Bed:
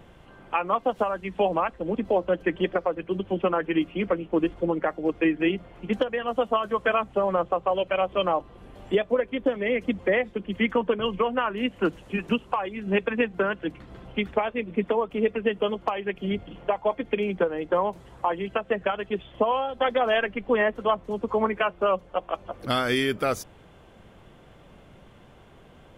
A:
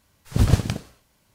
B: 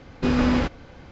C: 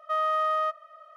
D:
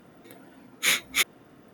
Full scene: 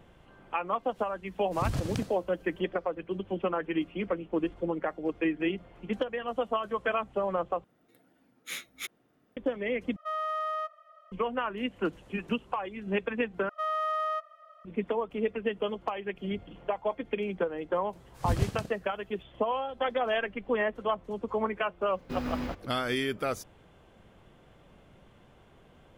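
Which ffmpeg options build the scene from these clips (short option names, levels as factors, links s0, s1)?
-filter_complex "[1:a]asplit=2[s0][s1];[3:a]asplit=2[s2][s3];[0:a]volume=0.501[s4];[s0]acompressor=threshold=0.1:ratio=6:attack=3.2:release=140:knee=1:detection=peak[s5];[4:a]bandreject=f=1000:w=13[s6];[2:a]acrusher=bits=7:mode=log:mix=0:aa=0.000001[s7];[s4]asplit=4[s8][s9][s10][s11];[s8]atrim=end=7.644[s12];[s6]atrim=end=1.73,asetpts=PTS-STARTPTS,volume=0.168[s13];[s9]atrim=start=9.366:end=9.964[s14];[s2]atrim=end=1.16,asetpts=PTS-STARTPTS,volume=0.473[s15];[s10]atrim=start=11.116:end=13.494[s16];[s3]atrim=end=1.16,asetpts=PTS-STARTPTS,volume=0.596[s17];[s11]atrim=start=14.646[s18];[s5]atrim=end=1.34,asetpts=PTS-STARTPTS,volume=0.531,afade=t=in:d=0.004:c=hsin,afade=t=out:st=1.336:d=0.004:c=hsin,adelay=1260[s19];[s1]atrim=end=1.34,asetpts=PTS-STARTPTS,volume=0.299,afade=t=in:d=0.004:c=hsin,afade=t=out:st=1.336:d=0.004:c=hsin,adelay=17890[s20];[s7]atrim=end=1.11,asetpts=PTS-STARTPTS,volume=0.211,afade=t=in:d=0.004:c=hsin,afade=t=out:st=1.106:d=0.004:c=hsin,adelay=21870[s21];[s12][s13]acrossfade=d=0.004:c1=hsin:c2=hsin[s22];[s22][s14]acrossfade=d=0.004:c1=hsin:c2=hsin[s23];[s23][s15]acrossfade=d=0.004:c1=hsin:c2=hsin[s24];[s24][s16]acrossfade=d=0.004:c1=hsin:c2=hsin[s25];[s25][s17]acrossfade=d=0.004:c1=hsin:c2=hsin[s26];[s26][s18]acrossfade=d=0.004:c1=hsin:c2=hsin[s27];[s27][s19][s20][s21]amix=inputs=4:normalize=0"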